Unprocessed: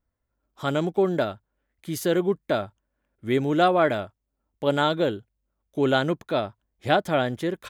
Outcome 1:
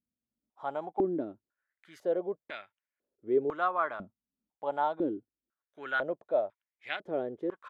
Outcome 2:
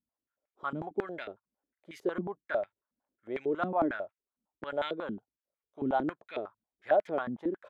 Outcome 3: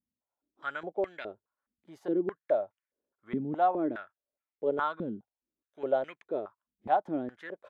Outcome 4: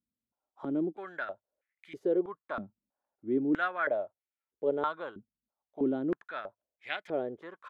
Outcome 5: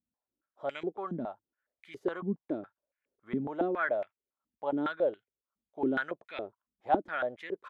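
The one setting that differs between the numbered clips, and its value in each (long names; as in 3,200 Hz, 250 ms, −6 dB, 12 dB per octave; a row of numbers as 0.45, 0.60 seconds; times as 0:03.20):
band-pass on a step sequencer, speed: 2, 11, 4.8, 3.1, 7.2 Hertz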